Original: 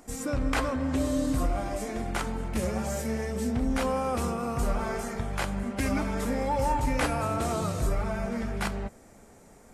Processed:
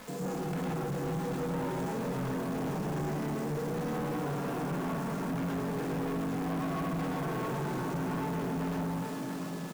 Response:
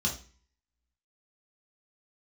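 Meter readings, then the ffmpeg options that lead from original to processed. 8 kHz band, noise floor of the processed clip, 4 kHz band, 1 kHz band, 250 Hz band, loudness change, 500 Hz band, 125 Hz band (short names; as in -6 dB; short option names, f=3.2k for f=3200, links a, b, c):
-9.5 dB, -37 dBFS, -6.5 dB, -5.0 dB, -2.5 dB, -4.0 dB, -4.0 dB, -2.0 dB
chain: -filter_complex "[0:a]acrossover=split=220|1200[a][b][c];[a]acompressor=threshold=-36dB:ratio=4[d];[b]acompressor=threshold=-38dB:ratio=4[e];[c]acompressor=threshold=-49dB:ratio=4[f];[d][e][f]amix=inputs=3:normalize=0,aeval=exprs='val(0)+0.00112*sin(2*PI*1500*n/s)':c=same,asplit=2[g][h];[h]aeval=exprs='0.0133*(abs(mod(val(0)/0.0133+3,4)-2)-1)':c=same,volume=-3dB[i];[g][i]amix=inputs=2:normalize=0,highshelf=f=2.9k:g=-9.5,aeval=exprs='val(0)*sin(2*PI*220*n/s)':c=same,aecho=1:1:48|404|683:0.447|0.447|0.501,asplit=2[j][k];[1:a]atrim=start_sample=2205,adelay=106[l];[k][l]afir=irnorm=-1:irlink=0,volume=-5.5dB[m];[j][m]amix=inputs=2:normalize=0,aeval=exprs='val(0)+0.00501*(sin(2*PI*50*n/s)+sin(2*PI*2*50*n/s)/2+sin(2*PI*3*50*n/s)/3+sin(2*PI*4*50*n/s)/4+sin(2*PI*5*50*n/s)/5)':c=same,bandreject=f=336.5:t=h:w=4,bandreject=f=673:t=h:w=4,afftfilt=real='re*between(b*sr/4096,120,9300)':imag='im*between(b*sr/4096,120,9300)':win_size=4096:overlap=0.75,acrusher=bits=7:mix=0:aa=0.000001,asoftclip=type=tanh:threshold=-32.5dB,volume=2.5dB"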